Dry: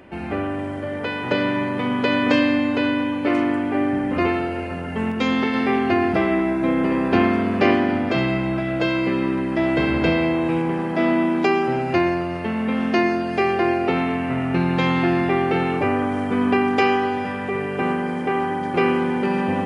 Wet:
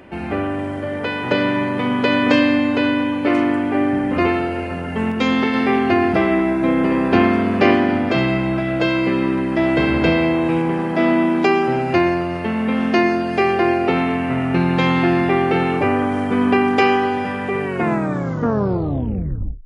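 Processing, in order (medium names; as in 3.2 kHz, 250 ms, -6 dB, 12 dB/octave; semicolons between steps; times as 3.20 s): tape stop on the ending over 2.03 s; trim +3 dB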